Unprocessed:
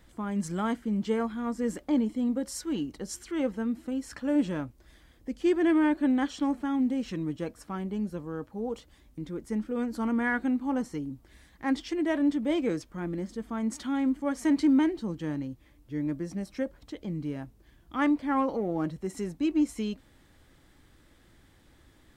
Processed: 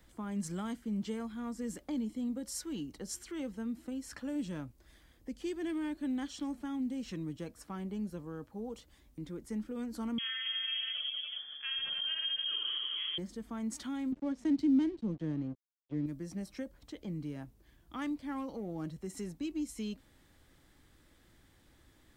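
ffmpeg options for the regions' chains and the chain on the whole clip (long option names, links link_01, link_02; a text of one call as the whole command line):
ffmpeg -i in.wav -filter_complex "[0:a]asettb=1/sr,asplit=3[link_01][link_02][link_03];[link_01]atrim=end=10.184[link_04];[link_02]atrim=start=10.18:end=13.18,asetpts=PTS-STARTPTS,afade=type=in:duration=0.004:curve=qsin,afade=type=out:start_time=2.996:duration=0.004:curve=qsin,aecho=1:1:50|112.5|190.6|288.3|410.4|562.9:0.794|0.631|0.501|0.398|0.316|0.251,atrim=end_sample=132300,acompressor=threshold=-31dB:ratio=3:attack=3.2:release=140:knee=1:detection=peak,lowpass=frequency=3000:width_type=q:width=0.5098,lowpass=frequency=3000:width_type=q:width=0.6013,lowpass=frequency=3000:width_type=q:width=0.9,lowpass=frequency=3000:width_type=q:width=2.563,afreqshift=-3500[link_05];[link_03]atrim=start=13.176[link_06];[link_04][link_05]acrossfade=duration=0.004:curve1=hsin:curve2=qsin[link_07];[link_07][link_06]acrossfade=duration=0.004:curve1=qsin:curve2=hsin,asettb=1/sr,asplit=3[link_08][link_09][link_10];[link_08]atrim=end=14.124[link_11];[link_09]atrim=start=14.12:end=16.06,asetpts=PTS-STARTPTS,afade=type=in:duration=0.004:curve=qsin,afade=type=out:start_time=1.936:duration=0.004:curve=qsin,aeval=exprs='sgn(val(0))*max(abs(val(0))-0.00398,0)':channel_layout=same,adynamicsmooth=sensitivity=3:basefreq=4000,equalizer=frequency=340:width=0.39:gain=8.5[link_12];[link_10]atrim=start=16.056[link_13];[link_11][link_12]acrossfade=duration=0.004:curve1=hsin:curve2=qsin[link_14];[link_14][link_13]acrossfade=duration=0.004:curve1=qsin:curve2=hsin,highshelf=frequency=7300:gain=-10.5,acrossover=split=230|3000[link_15][link_16][link_17];[link_16]acompressor=threshold=-37dB:ratio=4[link_18];[link_15][link_18][link_17]amix=inputs=3:normalize=0,aemphasis=mode=production:type=50kf,volume=-5dB" out.wav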